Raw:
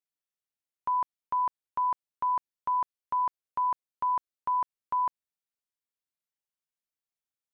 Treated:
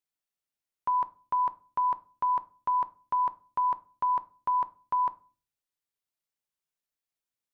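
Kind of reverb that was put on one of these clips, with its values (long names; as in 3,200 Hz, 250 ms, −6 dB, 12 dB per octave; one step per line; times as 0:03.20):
rectangular room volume 230 cubic metres, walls furnished, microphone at 0.34 metres
level +1 dB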